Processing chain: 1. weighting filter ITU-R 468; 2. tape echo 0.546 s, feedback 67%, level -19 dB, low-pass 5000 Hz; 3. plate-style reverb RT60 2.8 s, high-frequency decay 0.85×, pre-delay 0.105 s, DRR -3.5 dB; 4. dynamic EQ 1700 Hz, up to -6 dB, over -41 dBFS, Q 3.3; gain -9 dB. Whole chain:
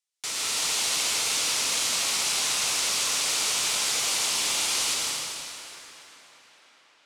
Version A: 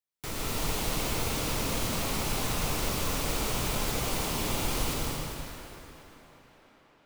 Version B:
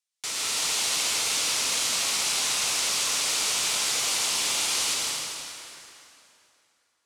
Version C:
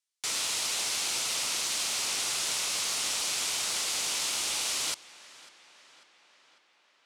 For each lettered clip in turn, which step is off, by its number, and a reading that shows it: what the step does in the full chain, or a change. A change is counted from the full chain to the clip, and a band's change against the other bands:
1, 125 Hz band +21.5 dB; 2, momentary loudness spread change -1 LU; 3, momentary loudness spread change -8 LU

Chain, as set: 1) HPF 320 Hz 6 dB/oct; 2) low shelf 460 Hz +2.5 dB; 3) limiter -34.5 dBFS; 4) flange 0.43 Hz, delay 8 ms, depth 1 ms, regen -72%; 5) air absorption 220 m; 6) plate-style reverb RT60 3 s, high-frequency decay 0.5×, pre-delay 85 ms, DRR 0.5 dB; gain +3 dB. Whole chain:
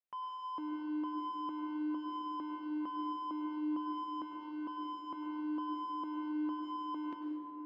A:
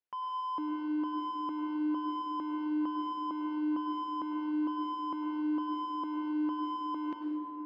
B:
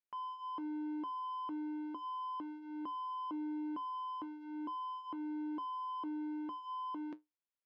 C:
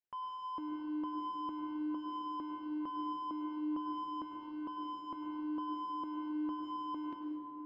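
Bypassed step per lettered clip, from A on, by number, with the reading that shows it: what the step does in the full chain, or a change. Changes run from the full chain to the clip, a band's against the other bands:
4, momentary loudness spread change -2 LU; 6, crest factor change -1.5 dB; 1, 2 kHz band -3.5 dB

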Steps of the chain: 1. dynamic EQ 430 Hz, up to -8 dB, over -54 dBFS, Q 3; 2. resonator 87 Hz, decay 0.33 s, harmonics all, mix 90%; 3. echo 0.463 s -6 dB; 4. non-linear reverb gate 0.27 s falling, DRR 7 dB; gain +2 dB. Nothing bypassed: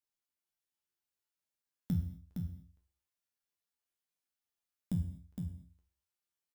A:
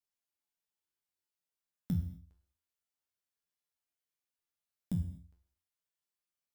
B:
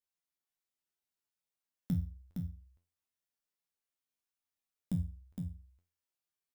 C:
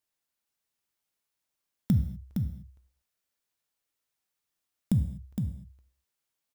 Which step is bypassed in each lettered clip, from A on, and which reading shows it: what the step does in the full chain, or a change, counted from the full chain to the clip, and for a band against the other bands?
3, echo-to-direct -3.0 dB to -7.0 dB; 4, echo-to-direct -3.0 dB to -6.0 dB; 2, loudness change +8.5 LU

